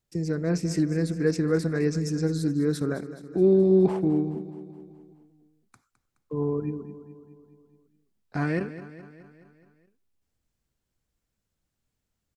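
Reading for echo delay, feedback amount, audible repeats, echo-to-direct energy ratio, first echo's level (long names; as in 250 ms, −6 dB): 211 ms, 58%, 5, −12.0 dB, −14.0 dB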